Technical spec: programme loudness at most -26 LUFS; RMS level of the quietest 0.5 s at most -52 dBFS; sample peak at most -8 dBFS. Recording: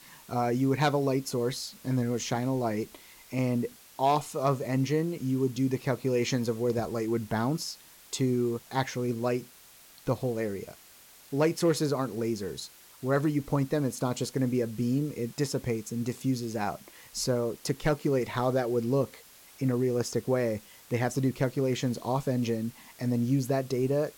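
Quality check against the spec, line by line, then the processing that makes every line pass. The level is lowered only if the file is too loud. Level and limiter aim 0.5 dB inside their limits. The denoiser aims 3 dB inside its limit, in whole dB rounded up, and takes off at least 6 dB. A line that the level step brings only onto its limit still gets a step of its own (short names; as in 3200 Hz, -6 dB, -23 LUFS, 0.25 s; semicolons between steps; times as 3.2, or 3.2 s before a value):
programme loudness -29.5 LUFS: OK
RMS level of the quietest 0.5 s -54 dBFS: OK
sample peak -14.5 dBFS: OK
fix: none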